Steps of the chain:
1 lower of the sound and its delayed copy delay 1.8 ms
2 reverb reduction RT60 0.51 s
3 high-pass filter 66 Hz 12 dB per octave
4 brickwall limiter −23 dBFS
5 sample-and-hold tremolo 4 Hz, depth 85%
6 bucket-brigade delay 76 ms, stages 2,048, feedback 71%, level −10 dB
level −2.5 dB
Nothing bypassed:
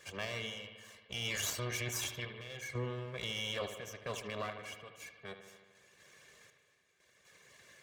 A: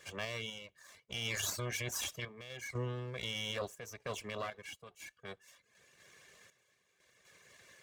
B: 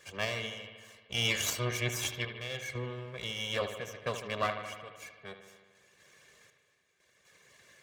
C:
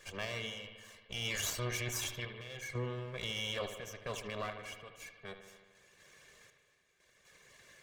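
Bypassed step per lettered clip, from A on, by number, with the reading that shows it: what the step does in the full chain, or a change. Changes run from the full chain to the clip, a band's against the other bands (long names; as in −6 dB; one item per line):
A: 6, echo-to-direct ratio −7.0 dB to none audible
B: 4, average gain reduction 2.0 dB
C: 3, change in momentary loudness spread −3 LU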